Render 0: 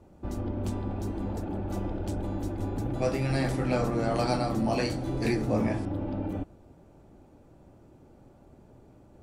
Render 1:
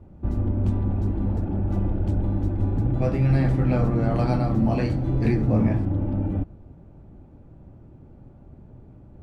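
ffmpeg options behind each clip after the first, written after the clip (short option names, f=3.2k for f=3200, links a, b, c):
-af "bass=f=250:g=11,treble=f=4k:g=-14"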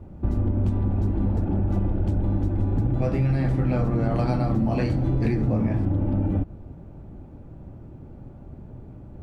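-af "acompressor=threshold=-24dB:ratio=6,volume=5dB"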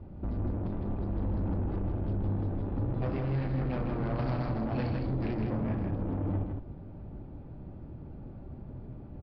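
-af "aresample=11025,asoftclip=type=tanh:threshold=-25.5dB,aresample=44100,aecho=1:1:159:0.596,volume=-3.5dB"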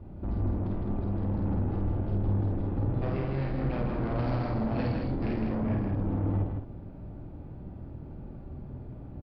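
-filter_complex "[0:a]asplit=2[a][b];[b]adelay=50,volume=-2.5dB[c];[a][c]amix=inputs=2:normalize=0"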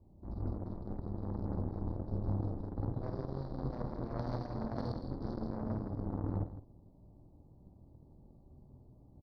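-af "asuperstop=centerf=2100:order=12:qfactor=0.75,aemphasis=mode=production:type=cd,aeval=exprs='0.119*(cos(1*acos(clip(val(0)/0.119,-1,1)))-cos(1*PI/2))+0.0299*(cos(3*acos(clip(val(0)/0.119,-1,1)))-cos(3*PI/2))+0.000944*(cos(7*acos(clip(val(0)/0.119,-1,1)))-cos(7*PI/2))':c=same,volume=-2.5dB"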